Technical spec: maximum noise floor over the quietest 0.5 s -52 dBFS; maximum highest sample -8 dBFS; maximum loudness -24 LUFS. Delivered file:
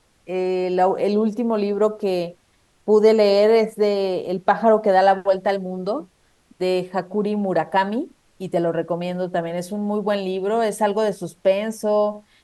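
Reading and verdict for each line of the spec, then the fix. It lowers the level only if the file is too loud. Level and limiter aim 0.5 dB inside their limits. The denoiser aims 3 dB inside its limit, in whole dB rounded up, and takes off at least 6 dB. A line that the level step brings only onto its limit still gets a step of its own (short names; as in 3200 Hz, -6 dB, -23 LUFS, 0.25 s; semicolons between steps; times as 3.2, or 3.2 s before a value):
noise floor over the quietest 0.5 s -61 dBFS: OK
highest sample -3.5 dBFS: fail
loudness -20.5 LUFS: fail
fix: gain -4 dB; limiter -8.5 dBFS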